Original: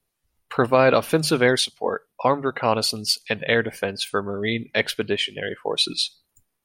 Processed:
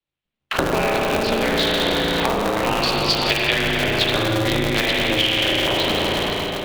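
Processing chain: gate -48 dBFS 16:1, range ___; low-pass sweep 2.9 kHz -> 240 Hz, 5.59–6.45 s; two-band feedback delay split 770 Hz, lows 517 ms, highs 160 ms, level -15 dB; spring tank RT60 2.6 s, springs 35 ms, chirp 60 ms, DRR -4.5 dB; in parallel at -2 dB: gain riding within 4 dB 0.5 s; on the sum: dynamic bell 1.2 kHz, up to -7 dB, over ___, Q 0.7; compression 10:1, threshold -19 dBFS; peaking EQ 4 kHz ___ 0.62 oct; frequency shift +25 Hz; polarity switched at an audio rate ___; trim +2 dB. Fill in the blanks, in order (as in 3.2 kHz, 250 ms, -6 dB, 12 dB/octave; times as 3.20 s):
-21 dB, -22 dBFS, +7 dB, 110 Hz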